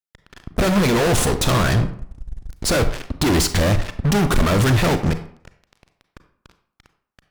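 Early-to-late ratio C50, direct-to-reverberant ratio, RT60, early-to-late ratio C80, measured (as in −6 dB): 11.5 dB, 9.5 dB, 0.60 s, 14.5 dB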